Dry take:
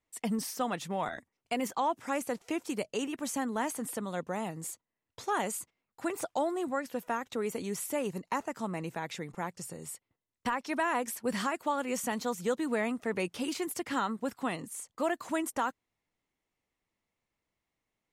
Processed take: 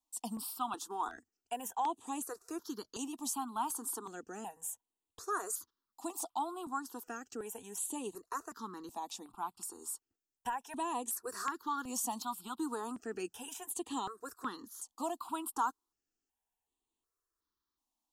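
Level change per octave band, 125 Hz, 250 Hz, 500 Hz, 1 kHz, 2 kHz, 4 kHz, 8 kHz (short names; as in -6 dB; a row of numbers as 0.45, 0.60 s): -16.5, -8.5, -11.0, -3.0, -11.0, -6.0, 0.0 dB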